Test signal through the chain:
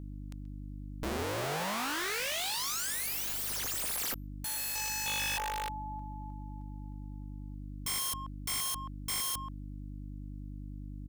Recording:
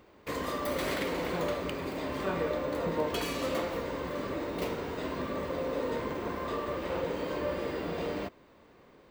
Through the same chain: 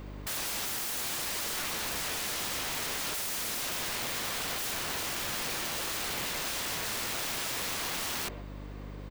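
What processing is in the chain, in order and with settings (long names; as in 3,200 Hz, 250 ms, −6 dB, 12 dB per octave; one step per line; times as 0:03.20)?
hum with harmonics 50 Hz, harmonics 6, −50 dBFS −5 dB per octave
high-shelf EQ 3,500 Hz +4.5 dB
in parallel at −5 dB: hard clipping −27 dBFS
on the sum: far-end echo of a speakerphone 130 ms, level −19 dB
wrap-around overflow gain 33 dB
level +3.5 dB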